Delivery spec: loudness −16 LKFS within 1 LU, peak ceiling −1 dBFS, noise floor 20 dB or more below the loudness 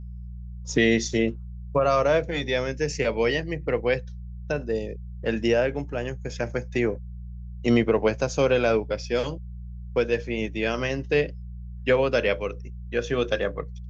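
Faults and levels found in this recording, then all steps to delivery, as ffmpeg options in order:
mains hum 60 Hz; hum harmonics up to 180 Hz; level of the hum −34 dBFS; integrated loudness −25.5 LKFS; sample peak −9.0 dBFS; target loudness −16.0 LKFS
→ -af "bandreject=frequency=60:width_type=h:width=4,bandreject=frequency=120:width_type=h:width=4,bandreject=frequency=180:width_type=h:width=4"
-af "volume=9.5dB,alimiter=limit=-1dB:level=0:latency=1"

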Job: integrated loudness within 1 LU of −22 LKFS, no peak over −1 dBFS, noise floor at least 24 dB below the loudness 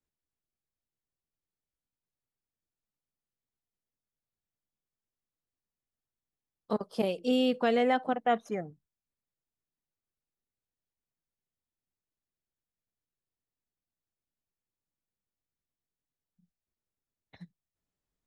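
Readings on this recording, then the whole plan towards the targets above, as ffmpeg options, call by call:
integrated loudness −29.5 LKFS; sample peak −16.0 dBFS; target loudness −22.0 LKFS
→ -af "volume=7.5dB"

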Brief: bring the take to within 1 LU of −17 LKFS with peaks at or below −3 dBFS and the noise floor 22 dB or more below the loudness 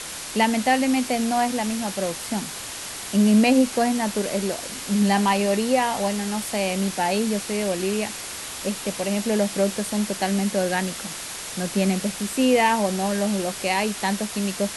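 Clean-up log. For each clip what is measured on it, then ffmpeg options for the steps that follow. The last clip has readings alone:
background noise floor −34 dBFS; target noise floor −45 dBFS; integrated loudness −23.0 LKFS; sample peak −7.0 dBFS; target loudness −17.0 LKFS
→ -af "afftdn=noise_reduction=11:noise_floor=-34"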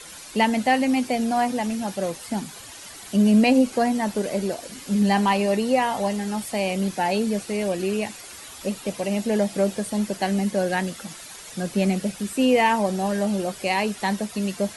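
background noise floor −41 dBFS; target noise floor −46 dBFS
→ -af "afftdn=noise_reduction=6:noise_floor=-41"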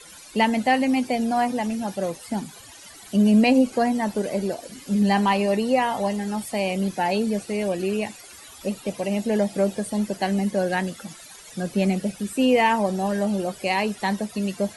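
background noise floor −45 dBFS; target noise floor −46 dBFS
→ -af "afftdn=noise_reduction=6:noise_floor=-45"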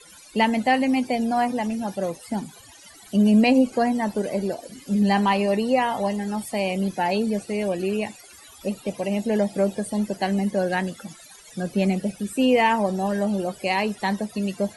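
background noise floor −48 dBFS; integrated loudness −23.5 LKFS; sample peak −7.5 dBFS; target loudness −17.0 LKFS
→ -af "volume=6.5dB,alimiter=limit=-3dB:level=0:latency=1"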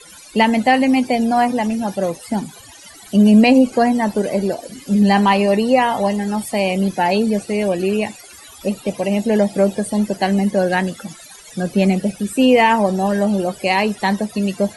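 integrated loudness −17.0 LKFS; sample peak −3.0 dBFS; background noise floor −41 dBFS

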